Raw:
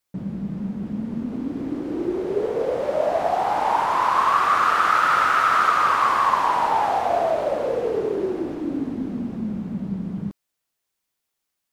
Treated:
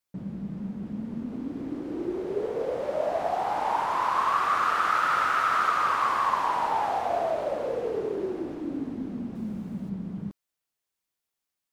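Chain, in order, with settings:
0:09.35–0:09.90: high-shelf EQ 6,300 Hz +10.5 dB
level −6 dB

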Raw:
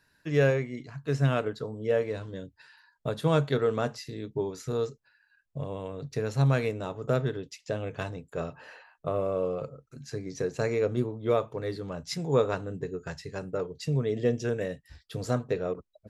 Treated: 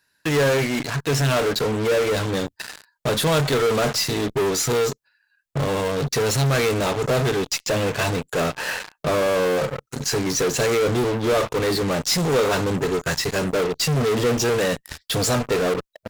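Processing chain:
spectral tilt +2 dB per octave
in parallel at −6 dB: fuzz pedal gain 49 dB, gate −50 dBFS
on the sum: level −1.5 dB

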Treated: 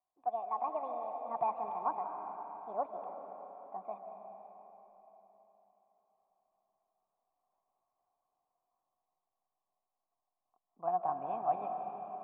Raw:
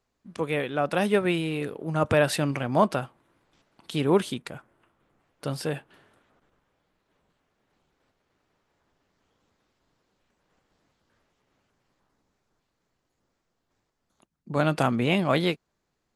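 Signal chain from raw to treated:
gliding playback speed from 152% → 112%
formant resonators in series a
comb and all-pass reverb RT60 4.2 s, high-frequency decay 0.85×, pre-delay 115 ms, DRR 4 dB
level −1 dB

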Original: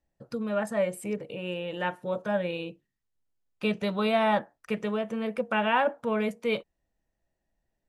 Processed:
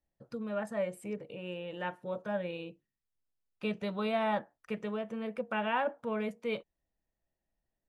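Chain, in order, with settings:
high-shelf EQ 4,700 Hz −5.5 dB
level −6.5 dB

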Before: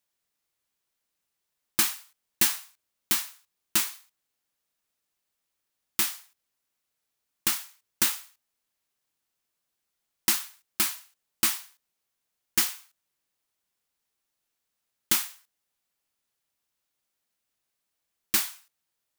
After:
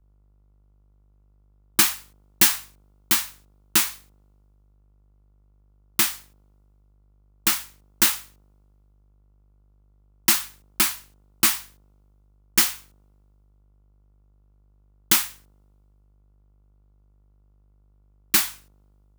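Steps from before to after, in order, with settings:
hum with harmonics 50 Hz, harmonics 29, −60 dBFS −7 dB per octave
multiband upward and downward expander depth 40%
level +3.5 dB

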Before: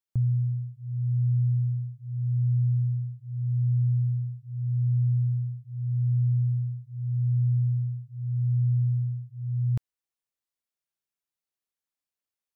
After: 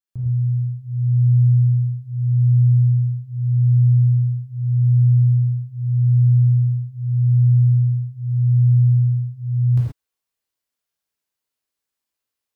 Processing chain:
automatic gain control gain up to 6 dB
reverb whose tail is shaped and stops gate 150 ms flat, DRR −6 dB
level −5.5 dB

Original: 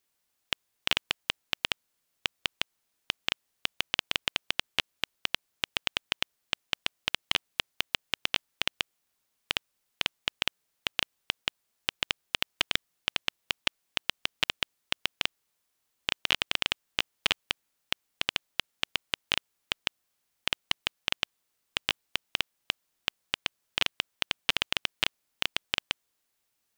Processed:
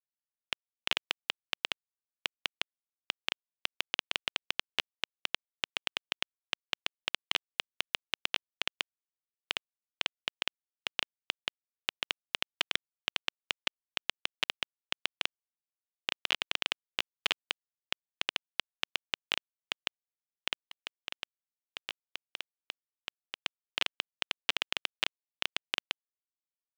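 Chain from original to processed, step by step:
high-pass filter 260 Hz 12 dB per octave
high-shelf EQ 11,000 Hz −8.5 dB
0:20.64–0:23.35: compressor whose output falls as the input rises −34 dBFS, ratio −0.5
bit-depth reduction 8 bits, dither none
level −3.5 dB

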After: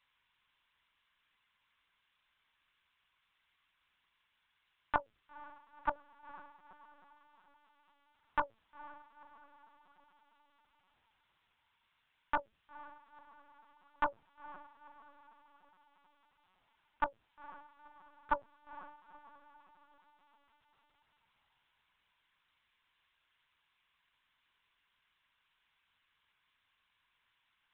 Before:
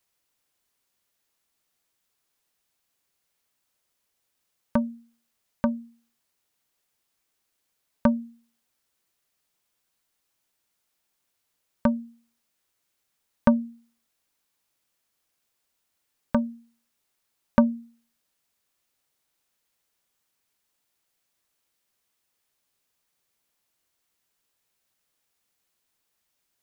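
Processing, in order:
high-pass filter 910 Hz 24 dB per octave
brickwall limiter −23 dBFS, peak gain reduction 9.5 dB
feedback delay with all-pass diffusion 460 ms, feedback 51%, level −15 dB
linear-prediction vocoder at 8 kHz pitch kept
wrong playback speed 25 fps video run at 24 fps
level +7 dB

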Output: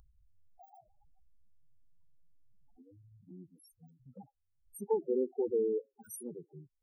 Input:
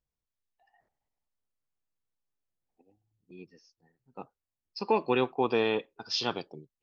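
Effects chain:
samples in bit-reversed order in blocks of 16 samples
spectral peaks only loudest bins 4
phaser swept by the level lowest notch 390 Hz, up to 1,300 Hz, full sweep at −31 dBFS
upward compression, threshold −43 dBFS

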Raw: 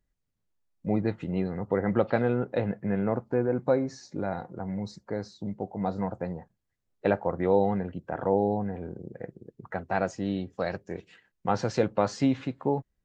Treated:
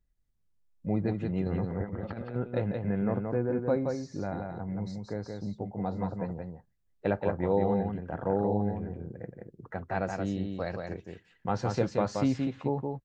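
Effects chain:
low-shelf EQ 120 Hz +10 dB
0:01.46–0:02.36: compressor whose output falls as the input rises −29 dBFS, ratio −0.5
single-tap delay 175 ms −4.5 dB
level −5 dB

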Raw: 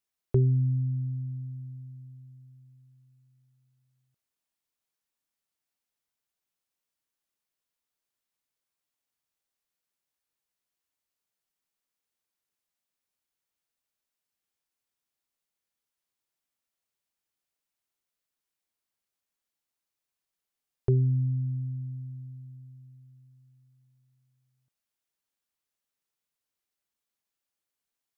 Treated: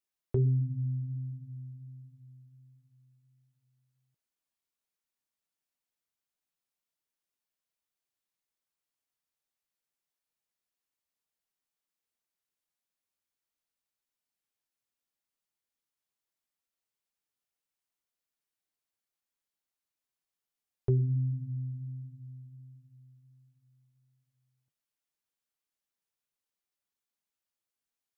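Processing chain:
flanger 1.4 Hz, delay 3.1 ms, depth 8.1 ms, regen −50%

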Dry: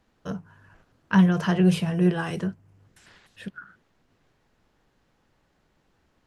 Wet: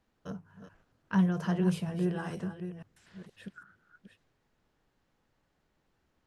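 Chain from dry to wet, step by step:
delay that plays each chunk backwards 471 ms, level −11 dB
dynamic equaliser 2,600 Hz, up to −5 dB, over −45 dBFS, Q 0.86
level −8 dB

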